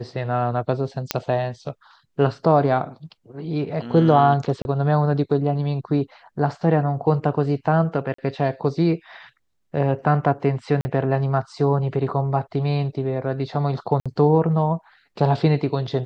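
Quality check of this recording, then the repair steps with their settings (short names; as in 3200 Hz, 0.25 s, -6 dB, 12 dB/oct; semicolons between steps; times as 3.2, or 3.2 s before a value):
1.11 pop -3 dBFS
4.62–4.65 gap 31 ms
8.14–8.18 gap 44 ms
10.81–10.85 gap 40 ms
14–14.06 gap 56 ms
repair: de-click; interpolate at 4.62, 31 ms; interpolate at 8.14, 44 ms; interpolate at 10.81, 40 ms; interpolate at 14, 56 ms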